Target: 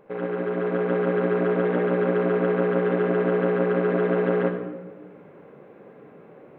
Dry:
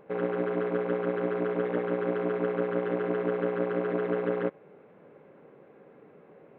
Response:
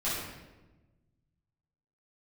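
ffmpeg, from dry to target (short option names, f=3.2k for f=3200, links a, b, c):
-filter_complex "[0:a]dynaudnorm=f=470:g=3:m=5dB,asplit=2[a][b];[1:a]atrim=start_sample=2205,adelay=37[c];[b][c]afir=irnorm=-1:irlink=0,volume=-12.5dB[d];[a][d]amix=inputs=2:normalize=0"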